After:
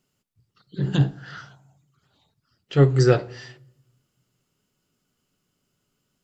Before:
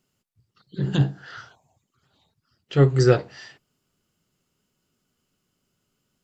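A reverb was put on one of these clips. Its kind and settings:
rectangular room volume 2,300 cubic metres, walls furnished, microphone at 0.34 metres

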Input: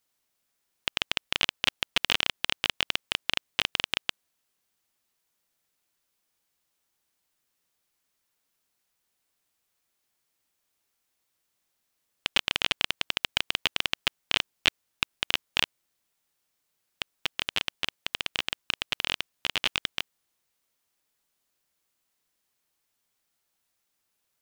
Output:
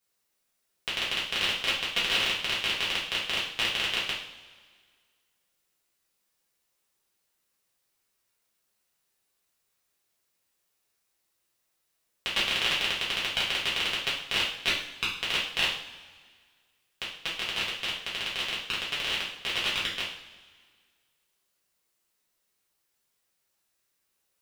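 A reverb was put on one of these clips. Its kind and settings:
coupled-rooms reverb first 0.51 s, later 1.8 s, from −16 dB, DRR −8 dB
level −7.5 dB

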